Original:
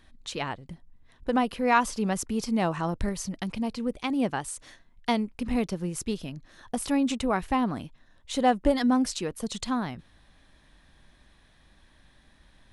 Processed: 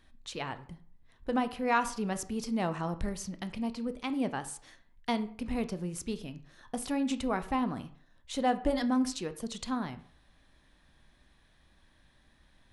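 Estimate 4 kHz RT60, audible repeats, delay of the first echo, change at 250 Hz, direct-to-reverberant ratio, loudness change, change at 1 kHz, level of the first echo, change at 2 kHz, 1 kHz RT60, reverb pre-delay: 0.35 s, no echo, no echo, -5.0 dB, 11.0 dB, -5.0 dB, -5.5 dB, no echo, -5.0 dB, 0.55 s, 16 ms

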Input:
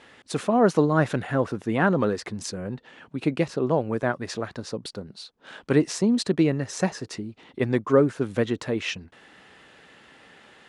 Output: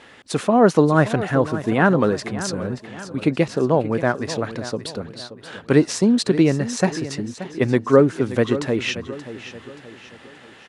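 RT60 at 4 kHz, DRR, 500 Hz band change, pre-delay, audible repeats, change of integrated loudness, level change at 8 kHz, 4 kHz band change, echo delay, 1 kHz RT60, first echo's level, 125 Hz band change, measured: no reverb, no reverb, +5.0 dB, no reverb, 3, +5.0 dB, +5.0 dB, +5.0 dB, 578 ms, no reverb, -13.5 dB, +5.0 dB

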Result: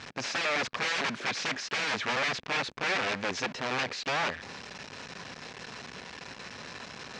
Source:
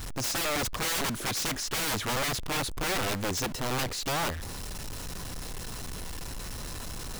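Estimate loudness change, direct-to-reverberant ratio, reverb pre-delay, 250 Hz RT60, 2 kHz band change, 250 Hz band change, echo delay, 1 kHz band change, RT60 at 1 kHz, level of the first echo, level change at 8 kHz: +1.0 dB, no reverb, no reverb, no reverb, +4.0 dB, -4.0 dB, no echo, 0.0 dB, no reverb, no echo, -9.5 dB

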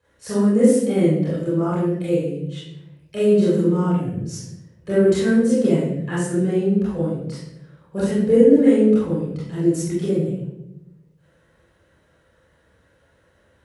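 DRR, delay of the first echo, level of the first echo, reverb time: -11.0 dB, no echo, no echo, 0.85 s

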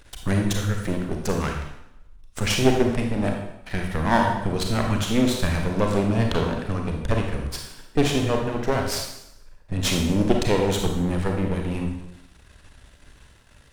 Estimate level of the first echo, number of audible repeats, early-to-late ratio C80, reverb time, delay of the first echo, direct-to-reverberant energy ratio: no echo, no echo, 6.5 dB, 0.75 s, no echo, 1.5 dB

